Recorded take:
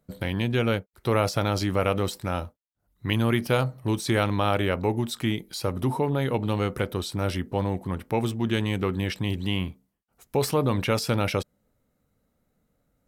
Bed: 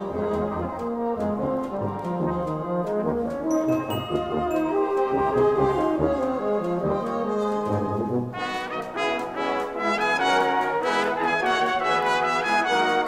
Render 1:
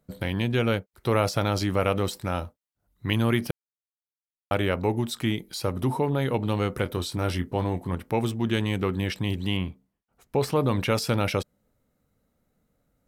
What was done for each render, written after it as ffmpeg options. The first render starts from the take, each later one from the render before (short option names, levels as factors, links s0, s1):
-filter_complex "[0:a]asettb=1/sr,asplit=3[s0][s1][s2];[s0]atrim=end=6.834[s3];[s1]atrim=start=6.83:end=7.95,asetpts=PTS-STARTPTS,afade=t=in:d=0.004:c=qsin,afade=t=out:st=1.116:d=0.004:c=qsin,asplit=2[s4][s5];[s5]adelay=23,volume=0.335[s6];[s4][s6]amix=inputs=2:normalize=0,atrim=end_sample=49392[s7];[s2]atrim=start=7.946[s8];[s3][s7]acrossfade=d=0.004:c1=hsin:c2=qsin[s9];[s9][s8]acrossfade=d=0.004:c1=qsin:c2=hsin,asettb=1/sr,asplit=3[s10][s11][s12];[s10]atrim=end=9.574[s13];[s11]atrim=start=9.57:end=10.56,asetpts=PTS-STARTPTS,afade=t=in:d=0.004:c=qsin,afade=t=out:st=0.986:d=0.004:c=qsin,highshelf=f=4800:g=-9[s14];[s12]atrim=start=10.556[s15];[s13][s14]acrossfade=d=0.004:c1=hsin:c2=qsin[s16];[s16][s15]acrossfade=d=0.004:c1=qsin:c2=hsin,asplit=3[s17][s18][s19];[s17]atrim=end=3.51,asetpts=PTS-STARTPTS,afade=t=out:st=3.506:d=0.004:c=hsin[s20];[s18]atrim=start=3.51:end=4.51,asetpts=PTS-STARTPTS,volume=0[s21];[s19]atrim=start=4.51,asetpts=PTS-STARTPTS,afade=t=in:d=0.004:c=hsin[s22];[s20][s21][s22]concat=n=3:v=0:a=1"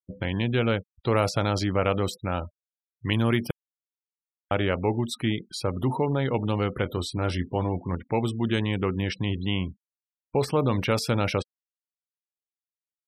-af "afftfilt=real='re*gte(hypot(re,im),0.0112)':imag='im*gte(hypot(re,im),0.0112)':win_size=1024:overlap=0.75"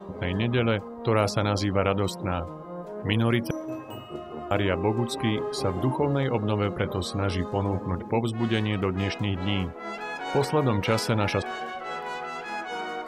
-filter_complex "[1:a]volume=0.266[s0];[0:a][s0]amix=inputs=2:normalize=0"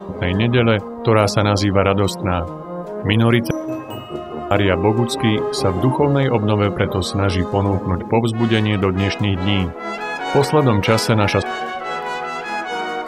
-af "volume=2.82,alimiter=limit=0.891:level=0:latency=1"